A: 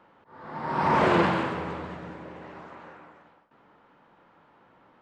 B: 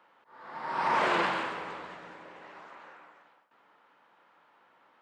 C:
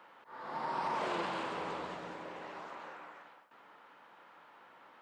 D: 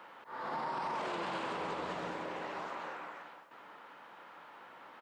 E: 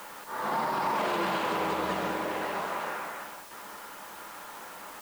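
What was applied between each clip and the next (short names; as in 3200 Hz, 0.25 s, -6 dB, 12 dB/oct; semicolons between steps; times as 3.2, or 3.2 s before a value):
HPF 1100 Hz 6 dB/oct
compressor 4:1, threshold -37 dBFS, peak gain reduction 12 dB; dynamic EQ 1800 Hz, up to -7 dB, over -55 dBFS, Q 1; gain +5 dB
limiter -34.5 dBFS, peak gain reduction 9.5 dB; echo 0.761 s -23 dB; gain +5 dB
in parallel at -7.5 dB: requantised 8-bit, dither triangular; on the sum: reverb RT60 0.30 s, pre-delay 5 ms, DRR 9.5 dB; gain +5 dB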